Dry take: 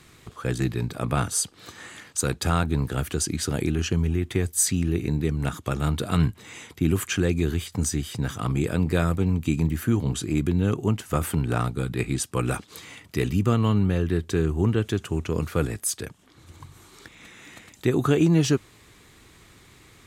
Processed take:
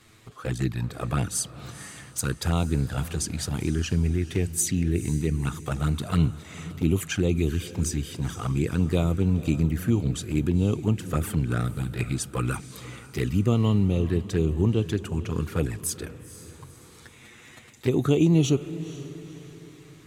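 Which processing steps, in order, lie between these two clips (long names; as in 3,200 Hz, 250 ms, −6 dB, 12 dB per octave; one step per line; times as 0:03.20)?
flanger swept by the level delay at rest 10.1 ms, full sweep at −18 dBFS
feedback delay with all-pass diffusion 484 ms, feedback 44%, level −15 dB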